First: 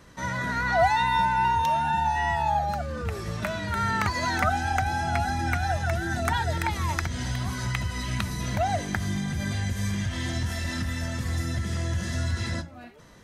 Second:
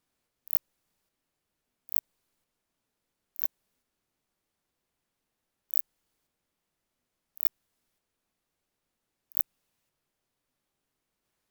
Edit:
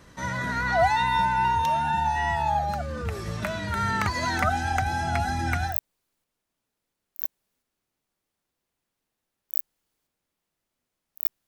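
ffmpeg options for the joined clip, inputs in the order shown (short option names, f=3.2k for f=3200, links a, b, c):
-filter_complex "[0:a]apad=whole_dur=11.47,atrim=end=11.47,atrim=end=5.78,asetpts=PTS-STARTPTS[a];[1:a]atrim=start=1.84:end=7.67,asetpts=PTS-STARTPTS[b];[a][b]acrossfade=d=0.14:c1=tri:c2=tri"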